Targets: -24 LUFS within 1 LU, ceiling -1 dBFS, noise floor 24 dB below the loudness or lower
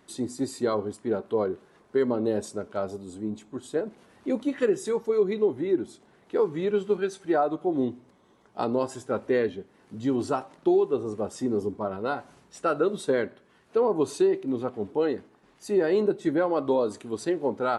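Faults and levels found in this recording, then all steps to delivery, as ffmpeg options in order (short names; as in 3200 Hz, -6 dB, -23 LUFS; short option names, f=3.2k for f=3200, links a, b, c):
loudness -27.5 LUFS; peak -13.0 dBFS; loudness target -24.0 LUFS
-> -af "volume=3.5dB"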